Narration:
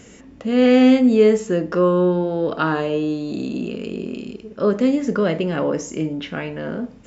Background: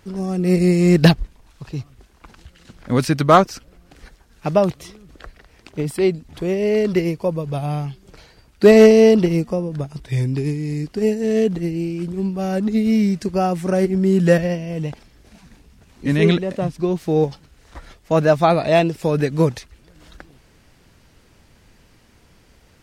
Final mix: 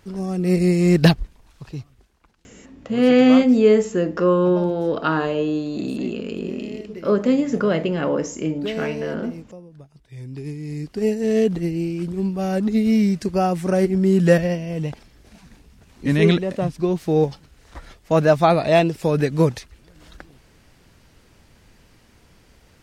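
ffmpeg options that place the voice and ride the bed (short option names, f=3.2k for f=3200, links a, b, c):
-filter_complex "[0:a]adelay=2450,volume=-0.5dB[a];[1:a]volume=16dB,afade=t=out:st=1.54:d=0.81:silence=0.149624,afade=t=in:st=10.14:d=1.15:silence=0.125893[b];[a][b]amix=inputs=2:normalize=0"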